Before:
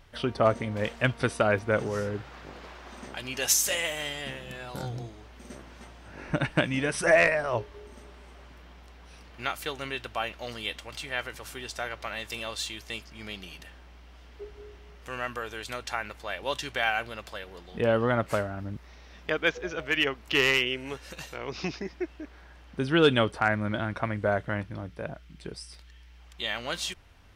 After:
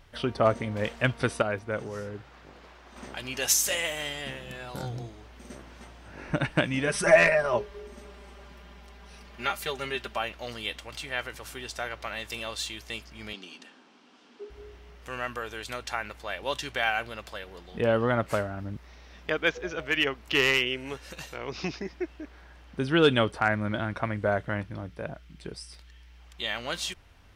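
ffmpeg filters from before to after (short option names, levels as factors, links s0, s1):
-filter_complex "[0:a]asettb=1/sr,asplit=3[s0][s1][s2];[s0]atrim=end=6.874[s3];[s1]atrim=start=6.87:end=10.18,asetpts=PTS-STARTPTS,afade=t=in:d=0.004:c=qsin,afade=t=out:st=3.306:d=0.004:c=qsin,aecho=1:1:5:0.77,atrim=end_sample=145971[s4];[s2]atrim=start=10.176[s5];[s3][s4]acrossfade=d=0.004:c1=hsin:c2=qsin[s6];[s6][s5]acrossfade=d=0.004:c1=qsin:c2=hsin,asettb=1/sr,asplit=3[s7][s8][s9];[s7]atrim=end=13.334[s10];[s8]atrim=start=13.33:end=14.5,asetpts=PTS-STARTPTS,afade=t=in:d=0.004:c=qsin,afade=t=out:st=1.166:d=0.004:c=qsin,highpass=f=230:w=0.5412,highpass=f=230:w=1.3066,equalizer=f=240:t=q:w=4:g=10,equalizer=f=620:t=q:w=4:g=-6,equalizer=f=2000:t=q:w=4:g=-6,lowpass=f=8600:w=0.5412,lowpass=f=8600:w=1.3066[s11];[s9]atrim=start=14.496[s12];[s10][s11]acrossfade=d=0.004:c1=hsin:c2=qsin[s13];[s13][s12]acrossfade=d=0.004:c1=qsin:c2=hsin,asplit=3[s14][s15][s16];[s14]atrim=end=1.422[s17];[s15]atrim=start=1.418:end=2.962,asetpts=PTS-STARTPTS,volume=0.501[s18];[s16]atrim=start=2.958[s19];[s17][s18]acrossfade=d=0.004:c1=hsin:c2=hsin[s20];[s20][s19]acrossfade=d=0.004:c1=hsin:c2=hsin"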